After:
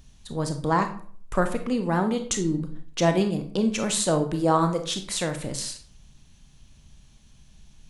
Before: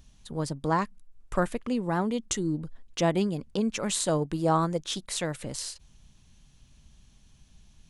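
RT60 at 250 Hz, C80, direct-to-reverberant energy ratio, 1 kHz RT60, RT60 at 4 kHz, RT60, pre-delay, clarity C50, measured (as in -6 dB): 0.50 s, 15.0 dB, 6.5 dB, 0.50 s, 0.35 s, 0.50 s, 24 ms, 10.5 dB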